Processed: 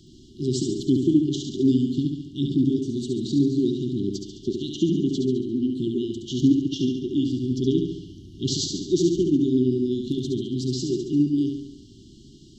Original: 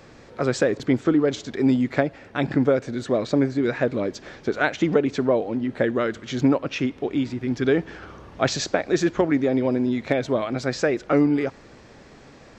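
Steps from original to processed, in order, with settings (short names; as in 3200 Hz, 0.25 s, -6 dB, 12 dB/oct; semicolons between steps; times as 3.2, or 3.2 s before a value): flutter echo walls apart 12 m, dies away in 0.82 s; FFT band-reject 400–2800 Hz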